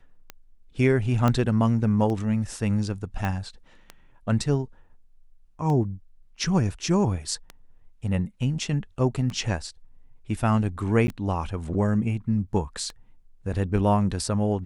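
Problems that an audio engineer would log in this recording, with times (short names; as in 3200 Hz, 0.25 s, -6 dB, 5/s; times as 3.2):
tick 33 1/3 rpm -20 dBFS
1.28 pop -11 dBFS
3.25 pop -16 dBFS
11.07–11.08 gap 10 ms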